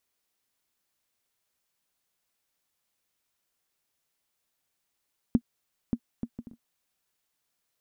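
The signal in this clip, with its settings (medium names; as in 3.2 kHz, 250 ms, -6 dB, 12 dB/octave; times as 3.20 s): bouncing ball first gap 0.58 s, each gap 0.52, 236 Hz, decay 63 ms -10.5 dBFS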